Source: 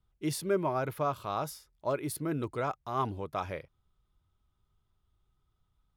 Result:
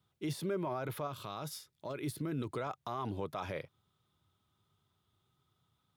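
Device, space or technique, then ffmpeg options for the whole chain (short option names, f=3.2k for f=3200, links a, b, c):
broadcast voice chain: -filter_complex "[0:a]highpass=f=100:w=0.5412,highpass=f=100:w=1.3066,deesser=0.95,acompressor=threshold=-32dB:ratio=5,equalizer=f=3.6k:t=o:w=0.41:g=5,alimiter=level_in=7.5dB:limit=-24dB:level=0:latency=1:release=22,volume=-7.5dB,asettb=1/sr,asplit=3[a][b][c];[a]atrim=end=1.074[d];[b]atrim=start=1.07:end=2.51,asetpts=PTS-STARTPTS,afade=t=in:d=0.004:c=qsin,afade=t=out:st=1.436:d=0.004:c=qsin,equalizer=f=780:t=o:w=1.7:g=-5.5[e];[c]atrim=start=2.506[f];[d][e]acrossfade=d=0.004:c1=hsin:c2=qsin[g];[g][f]acrossfade=d=0.004:c1=qsin:c2=hsin,volume=4dB"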